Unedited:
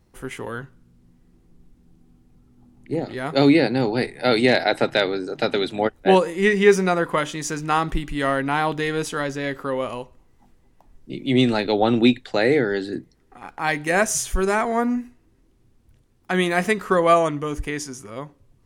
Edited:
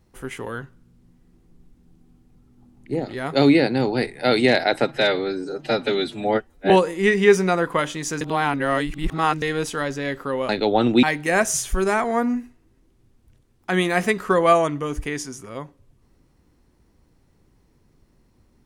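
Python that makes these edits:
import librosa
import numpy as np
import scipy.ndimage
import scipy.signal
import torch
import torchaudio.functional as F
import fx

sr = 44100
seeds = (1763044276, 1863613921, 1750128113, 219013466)

y = fx.edit(x, sr, fx.stretch_span(start_s=4.87, length_s=1.22, factor=1.5),
    fx.reverse_span(start_s=7.6, length_s=1.21),
    fx.cut(start_s=9.88, length_s=1.68),
    fx.cut(start_s=12.1, length_s=1.54), tone=tone)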